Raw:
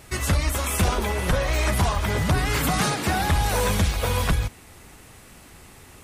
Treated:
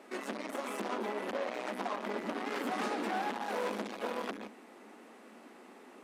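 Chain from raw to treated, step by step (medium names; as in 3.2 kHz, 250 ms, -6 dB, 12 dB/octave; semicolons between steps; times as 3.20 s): low-pass 1 kHz 6 dB/octave; saturation -29 dBFS, distortion -7 dB; elliptic high-pass 220 Hz, stop band 40 dB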